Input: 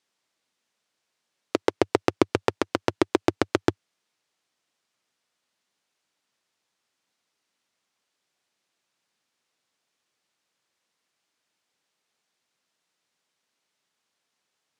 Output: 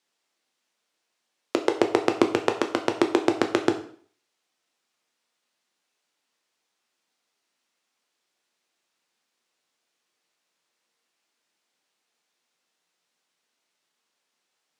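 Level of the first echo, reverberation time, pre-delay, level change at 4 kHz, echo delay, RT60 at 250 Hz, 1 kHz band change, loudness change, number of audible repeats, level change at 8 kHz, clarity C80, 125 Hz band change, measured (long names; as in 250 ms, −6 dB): no echo audible, 0.50 s, 5 ms, +1.0 dB, no echo audible, 0.55 s, +1.5 dB, +1.0 dB, no echo audible, +1.0 dB, 14.5 dB, −6.0 dB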